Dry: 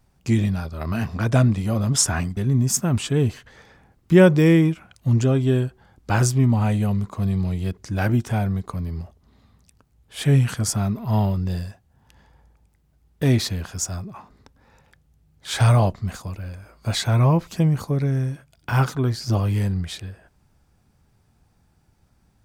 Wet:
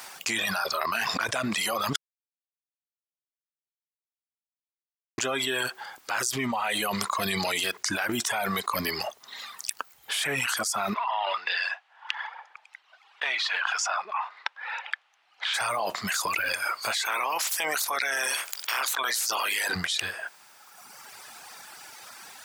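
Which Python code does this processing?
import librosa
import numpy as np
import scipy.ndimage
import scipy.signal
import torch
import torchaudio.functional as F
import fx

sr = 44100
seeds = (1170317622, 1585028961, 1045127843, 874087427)

y = fx.cheby1_bandpass(x, sr, low_hz=810.0, high_hz=3000.0, order=2, at=(10.93, 15.53), fade=0.02)
y = fx.spec_clip(y, sr, under_db=28, at=(17.05, 19.74), fade=0.02)
y = fx.edit(y, sr, fx.silence(start_s=1.96, length_s=3.22), tone=tone)
y = scipy.signal.sosfilt(scipy.signal.butter(2, 1100.0, 'highpass', fs=sr, output='sos'), y)
y = fx.dereverb_blind(y, sr, rt60_s=1.3)
y = fx.env_flatten(y, sr, amount_pct=100)
y = y * 10.0 ** (-9.0 / 20.0)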